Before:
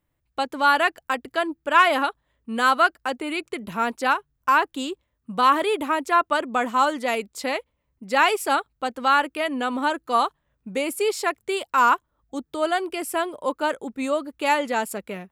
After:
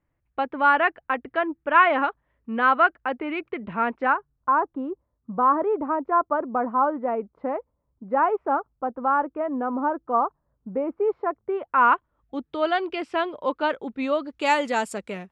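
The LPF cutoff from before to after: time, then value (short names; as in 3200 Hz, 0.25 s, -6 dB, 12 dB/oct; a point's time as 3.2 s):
LPF 24 dB/oct
3.91 s 2400 Hz
4.49 s 1200 Hz
11.44 s 1200 Hz
11.85 s 2400 Hz
12.68 s 4100 Hz
14.12 s 4100 Hz
14.52 s 8500 Hz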